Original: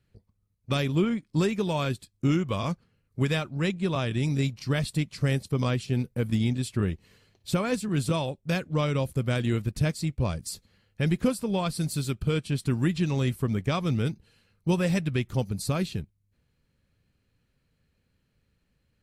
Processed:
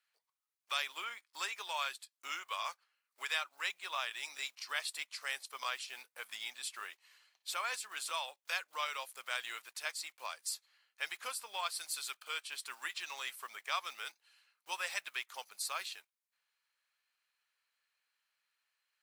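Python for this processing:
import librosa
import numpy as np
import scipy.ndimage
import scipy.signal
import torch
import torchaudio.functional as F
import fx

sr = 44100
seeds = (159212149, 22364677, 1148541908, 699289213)

y = fx.block_float(x, sr, bits=7)
y = scipy.signal.sosfilt(scipy.signal.butter(4, 920.0, 'highpass', fs=sr, output='sos'), y)
y = F.gain(torch.from_numpy(y), -2.5).numpy()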